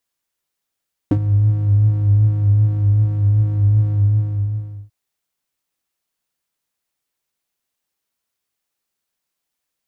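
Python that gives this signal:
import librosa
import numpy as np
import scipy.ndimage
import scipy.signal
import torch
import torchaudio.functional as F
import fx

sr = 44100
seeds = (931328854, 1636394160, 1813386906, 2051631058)

y = fx.sub_patch_wobble(sr, seeds[0], note=44, wave='square', wave2='saw', interval_st=0, level2_db=-16, sub_db=-15.0, noise_db=-11.5, kind='bandpass', cutoff_hz=110.0, q=3.3, env_oct=1.5, env_decay_s=0.05, env_sustain_pct=5, attack_ms=1.7, decay_s=0.07, sustain_db=-12.0, release_s=0.97, note_s=2.82, lfo_hz=2.6, wobble_oct=0.3)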